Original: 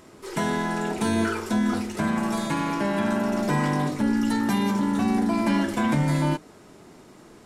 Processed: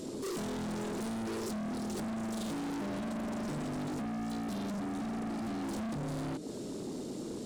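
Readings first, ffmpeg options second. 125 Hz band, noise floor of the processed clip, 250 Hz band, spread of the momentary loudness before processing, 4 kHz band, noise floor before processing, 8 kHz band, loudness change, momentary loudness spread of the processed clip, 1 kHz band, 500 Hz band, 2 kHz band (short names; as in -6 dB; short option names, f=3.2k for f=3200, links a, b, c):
-14.0 dB, -41 dBFS, -12.0 dB, 4 LU, -11.0 dB, -50 dBFS, -8.5 dB, -12.5 dB, 4 LU, -14.5 dB, -10.5 dB, -16.5 dB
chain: -af "equalizer=f=125:t=o:w=1:g=5,equalizer=f=250:t=o:w=1:g=11,equalizer=f=500:t=o:w=1:g=10,equalizer=f=1k:t=o:w=1:g=-8,equalizer=f=2k:t=o:w=1:g=-6,equalizer=f=4k:t=o:w=1:g=8,equalizer=f=8k:t=o:w=1:g=8,alimiter=limit=-11dB:level=0:latency=1:release=60,acompressor=threshold=-24dB:ratio=6,asoftclip=type=hard:threshold=-35.5dB"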